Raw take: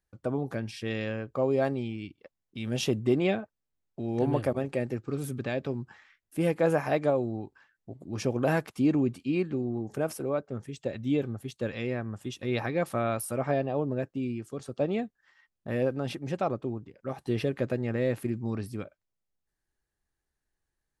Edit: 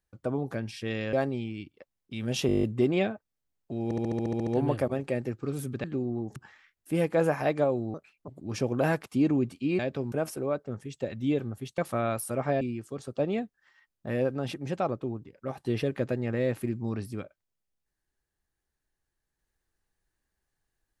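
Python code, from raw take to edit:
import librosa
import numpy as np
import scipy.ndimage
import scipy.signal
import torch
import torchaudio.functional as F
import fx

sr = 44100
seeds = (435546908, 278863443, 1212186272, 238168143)

y = fx.edit(x, sr, fx.cut(start_s=1.13, length_s=0.44),
    fx.stutter(start_s=2.91, slice_s=0.02, count=9),
    fx.stutter(start_s=4.12, slice_s=0.07, count=10),
    fx.swap(start_s=5.49, length_s=0.33, other_s=9.43, other_length_s=0.52),
    fx.speed_span(start_s=7.4, length_s=0.52, speed=1.53),
    fx.cut(start_s=11.61, length_s=1.18),
    fx.cut(start_s=13.62, length_s=0.6), tone=tone)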